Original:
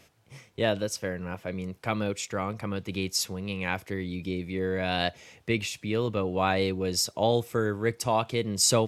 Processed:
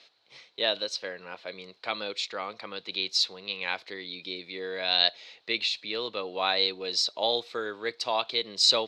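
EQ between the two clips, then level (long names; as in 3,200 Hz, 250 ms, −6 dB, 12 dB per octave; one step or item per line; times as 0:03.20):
high-pass filter 460 Hz 12 dB per octave
low-pass with resonance 4,100 Hz, resonance Q 8.2
−2.5 dB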